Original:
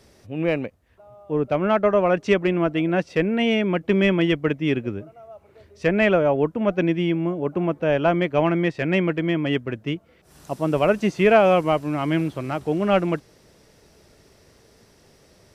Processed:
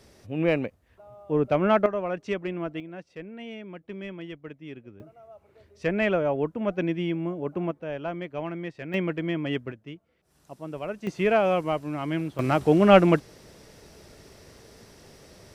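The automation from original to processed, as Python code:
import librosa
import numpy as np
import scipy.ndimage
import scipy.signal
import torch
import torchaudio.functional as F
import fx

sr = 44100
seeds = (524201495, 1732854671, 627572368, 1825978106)

y = fx.gain(x, sr, db=fx.steps((0.0, -1.0), (1.86, -10.5), (2.8, -19.0), (5.0, -6.0), (7.71, -13.0), (8.94, -6.0), (9.72, -14.5), (11.07, -6.5), (12.39, 4.0)))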